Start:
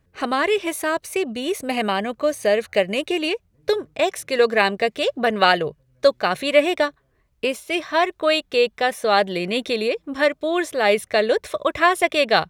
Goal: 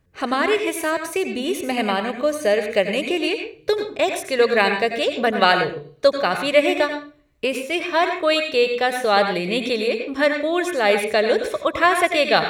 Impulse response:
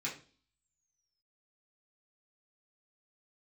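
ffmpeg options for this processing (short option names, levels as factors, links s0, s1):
-filter_complex "[0:a]asplit=2[s0][s1];[1:a]atrim=start_sample=2205,adelay=87[s2];[s1][s2]afir=irnorm=-1:irlink=0,volume=0.398[s3];[s0][s3]amix=inputs=2:normalize=0"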